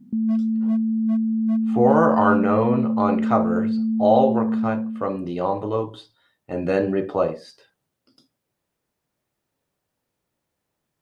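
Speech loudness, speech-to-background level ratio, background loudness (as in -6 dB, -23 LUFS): -22.5 LUFS, 0.0 dB, -22.5 LUFS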